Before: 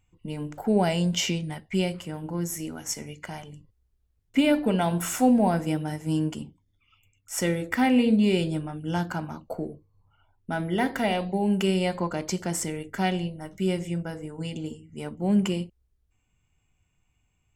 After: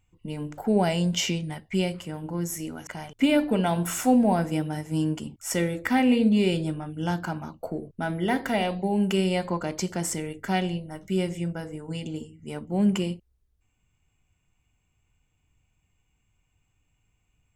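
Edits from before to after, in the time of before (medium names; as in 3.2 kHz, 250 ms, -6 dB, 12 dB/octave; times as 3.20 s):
shorten pauses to 0.13 s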